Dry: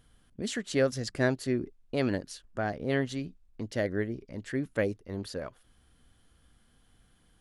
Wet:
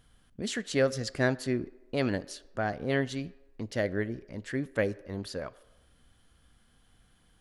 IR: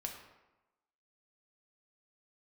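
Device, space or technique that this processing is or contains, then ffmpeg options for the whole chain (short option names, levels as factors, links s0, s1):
filtered reverb send: -filter_complex "[0:a]asplit=2[s0][s1];[s1]highpass=f=300:w=0.5412,highpass=f=300:w=1.3066,lowpass=8200[s2];[1:a]atrim=start_sample=2205[s3];[s2][s3]afir=irnorm=-1:irlink=0,volume=0.266[s4];[s0][s4]amix=inputs=2:normalize=0"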